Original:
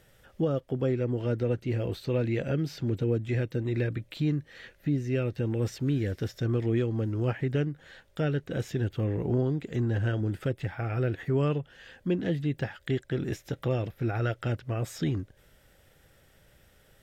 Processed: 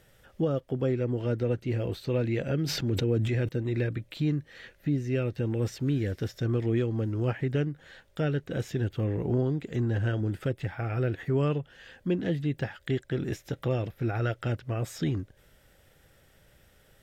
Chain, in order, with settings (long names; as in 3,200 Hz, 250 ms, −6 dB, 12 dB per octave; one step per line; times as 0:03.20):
0:02.64–0:03.49: level that may fall only so fast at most 24 dB per second